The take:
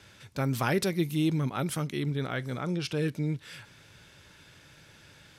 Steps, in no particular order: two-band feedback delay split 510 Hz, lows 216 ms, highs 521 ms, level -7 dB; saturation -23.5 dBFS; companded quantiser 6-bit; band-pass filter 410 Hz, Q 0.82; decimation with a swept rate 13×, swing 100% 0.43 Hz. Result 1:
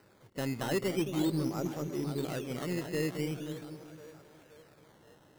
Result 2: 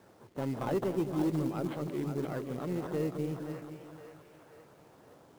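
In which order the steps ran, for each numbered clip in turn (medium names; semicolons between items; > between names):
band-pass filter > companded quantiser > saturation > two-band feedback delay > decimation with a swept rate; decimation with a swept rate > band-pass filter > saturation > two-band feedback delay > companded quantiser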